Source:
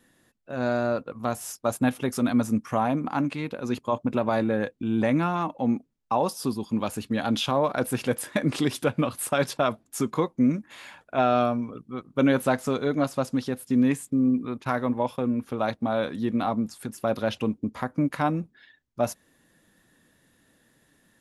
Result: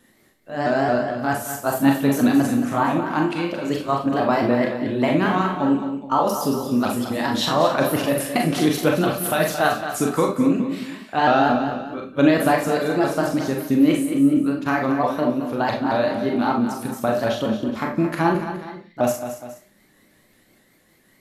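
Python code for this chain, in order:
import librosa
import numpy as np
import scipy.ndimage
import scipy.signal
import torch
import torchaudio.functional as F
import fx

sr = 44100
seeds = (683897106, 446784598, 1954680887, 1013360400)

y = fx.pitch_ramps(x, sr, semitones=3.5, every_ms=221)
y = fx.echo_multitap(y, sr, ms=(178, 222, 419), db=(-18.5, -10.0, -16.5))
y = fx.rev_schroeder(y, sr, rt60_s=0.31, comb_ms=29, drr_db=1.5)
y = y * librosa.db_to_amplitude(4.0)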